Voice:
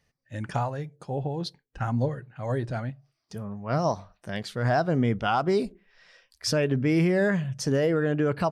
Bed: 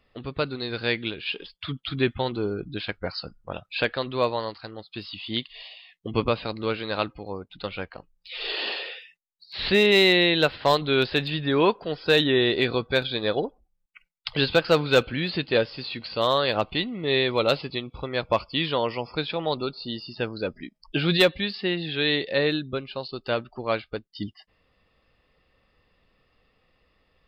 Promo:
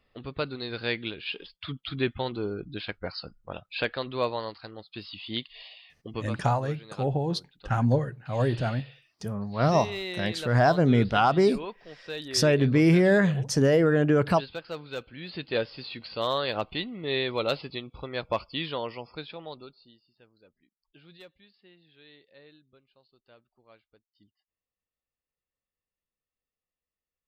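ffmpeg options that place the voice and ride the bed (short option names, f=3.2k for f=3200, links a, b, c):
-filter_complex "[0:a]adelay=5900,volume=3dB[a];[1:a]volume=7.5dB,afade=t=out:st=5.87:d=0.48:silence=0.223872,afade=t=in:st=15.12:d=0.48:silence=0.266073,afade=t=out:st=18.44:d=1.56:silence=0.0530884[b];[a][b]amix=inputs=2:normalize=0"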